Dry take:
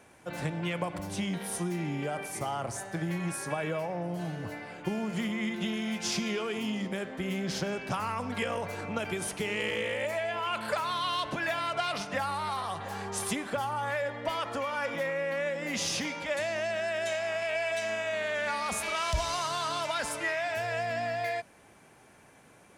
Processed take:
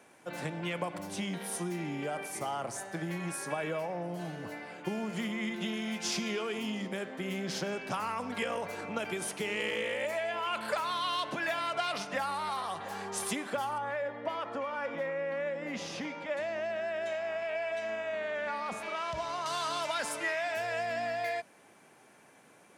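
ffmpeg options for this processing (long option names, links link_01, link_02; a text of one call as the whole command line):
ffmpeg -i in.wav -filter_complex "[0:a]asettb=1/sr,asplit=3[link_01][link_02][link_03];[link_01]atrim=end=13.784[link_04];[link_02]atrim=start=13.78:end=19.46,asetpts=PTS-STARTPTS,afade=type=in:duration=0.004:curve=qsin,afade=type=out:start_time=5.676:duration=0.004:curve=qsin,lowpass=frequency=1500:poles=1[link_05];[link_03]atrim=start=19.456[link_06];[link_04][link_05]acrossfade=duration=0.004:curve1=hsin:curve2=qsin[link_07];[link_07][link_06]acrossfade=duration=0.004:curve1=qsin:curve2=hsin,highpass=180,volume=-1.5dB" out.wav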